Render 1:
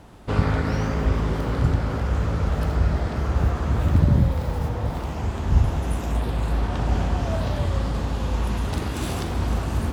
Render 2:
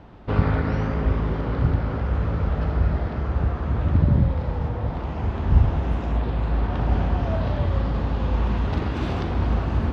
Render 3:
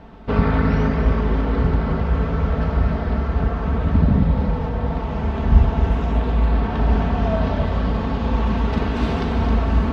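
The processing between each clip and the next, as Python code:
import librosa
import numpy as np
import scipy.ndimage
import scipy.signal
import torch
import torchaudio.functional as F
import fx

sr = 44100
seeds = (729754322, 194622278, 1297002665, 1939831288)

y1 = fx.rider(x, sr, range_db=10, speed_s=2.0)
y1 = fx.air_absorb(y1, sr, metres=240.0)
y2 = y1 + 0.54 * np.pad(y1, (int(4.5 * sr / 1000.0), 0))[:len(y1)]
y2 = y2 + 10.0 ** (-7.0 / 20.0) * np.pad(y2, (int(265 * sr / 1000.0), 0))[:len(y2)]
y2 = y2 * 10.0 ** (3.0 / 20.0)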